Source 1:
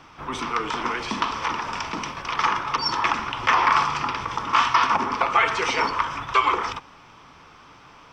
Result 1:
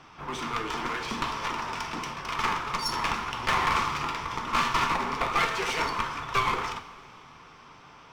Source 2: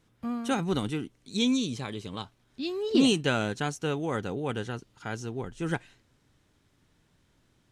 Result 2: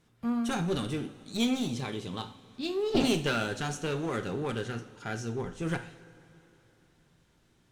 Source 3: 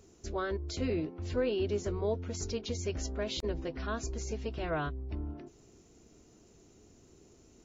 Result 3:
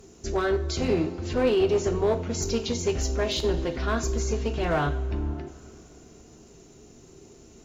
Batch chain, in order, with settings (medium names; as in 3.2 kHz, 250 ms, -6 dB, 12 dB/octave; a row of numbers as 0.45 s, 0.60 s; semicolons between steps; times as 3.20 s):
one-sided clip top -30.5 dBFS; two-slope reverb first 0.42 s, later 3.3 s, from -18 dB, DRR 5.5 dB; peak normalisation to -12 dBFS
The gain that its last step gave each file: -3.5 dB, -0.5 dB, +8.0 dB